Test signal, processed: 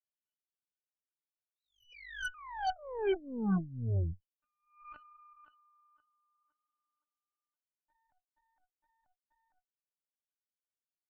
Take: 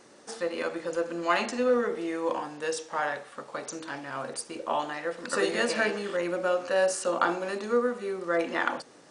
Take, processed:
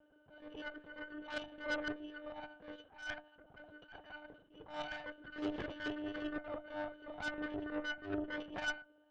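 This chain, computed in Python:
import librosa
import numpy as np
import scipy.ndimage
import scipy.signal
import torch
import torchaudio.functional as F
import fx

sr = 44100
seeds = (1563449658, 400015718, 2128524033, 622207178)

y = fx.octave_resonator(x, sr, note='F#', decay_s=0.11)
y = fx.lpc_monotone(y, sr, seeds[0], pitch_hz=300.0, order=8)
y = fx.highpass(y, sr, hz=120.0, slope=6)
y = fx.cheby_harmonics(y, sr, harmonics=(7, 8), levels_db=(-38, -17), full_scale_db=-27.0)
y = fx.attack_slew(y, sr, db_per_s=130.0)
y = y * 10.0 ** (4.0 / 20.0)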